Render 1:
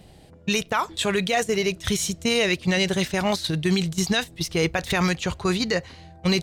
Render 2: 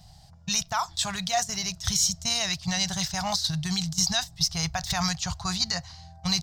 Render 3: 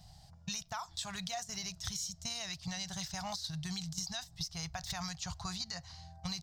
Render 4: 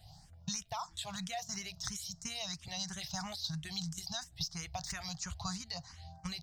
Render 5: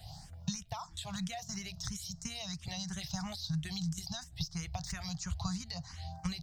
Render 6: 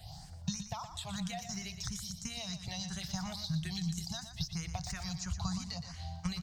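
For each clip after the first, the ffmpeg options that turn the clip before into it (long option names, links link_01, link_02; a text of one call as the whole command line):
ffmpeg -i in.wav -af "firequalizer=gain_entry='entry(140,0);entry(290,-25);entry(470,-27);entry(700,-1);entry(2400,-11);entry(5100,9);entry(10000,-6);entry(14000,1)':delay=0.05:min_phase=1" out.wav
ffmpeg -i in.wav -af "acompressor=threshold=-32dB:ratio=6,volume=-5dB" out.wav
ffmpeg -i in.wav -filter_complex "[0:a]asplit=2[link_01][link_02];[link_02]afreqshift=3[link_03];[link_01][link_03]amix=inputs=2:normalize=1,volume=3dB" out.wav
ffmpeg -i in.wav -filter_complex "[0:a]acrossover=split=210[link_01][link_02];[link_02]acompressor=threshold=-52dB:ratio=2.5[link_03];[link_01][link_03]amix=inputs=2:normalize=0,volume=7.5dB" out.wav
ffmpeg -i in.wav -af "aecho=1:1:119|238|357:0.335|0.104|0.0322" out.wav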